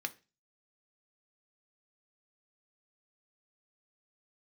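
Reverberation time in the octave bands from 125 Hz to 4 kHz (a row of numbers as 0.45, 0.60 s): 0.45, 0.40, 0.30, 0.30, 0.30, 0.35 s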